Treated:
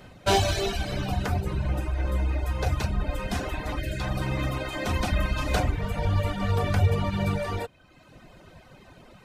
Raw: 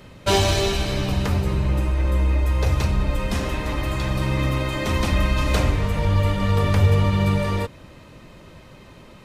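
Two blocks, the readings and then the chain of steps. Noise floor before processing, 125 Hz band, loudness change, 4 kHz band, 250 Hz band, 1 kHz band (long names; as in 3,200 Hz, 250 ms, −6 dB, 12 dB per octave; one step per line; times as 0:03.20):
−46 dBFS, −6.5 dB, −6.0 dB, −5.5 dB, −6.5 dB, −3.0 dB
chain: gain on a spectral selection 0:03.79–0:04.00, 680–1,400 Hz −18 dB
hollow resonant body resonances 730/1,500 Hz, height 11 dB, ringing for 45 ms
reverb reduction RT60 0.98 s
level −3.5 dB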